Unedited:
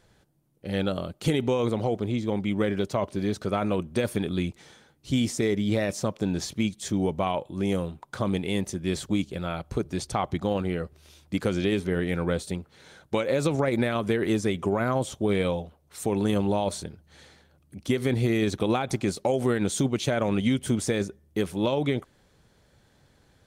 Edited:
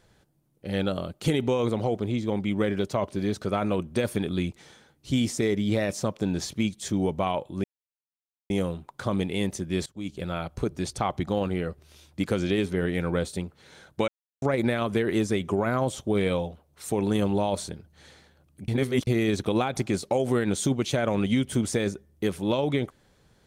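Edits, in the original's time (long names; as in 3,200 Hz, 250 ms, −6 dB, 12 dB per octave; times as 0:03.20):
0:07.64: splice in silence 0.86 s
0:09.00–0:09.31: fade in quadratic, from −20.5 dB
0:13.22–0:13.56: silence
0:17.82–0:18.21: reverse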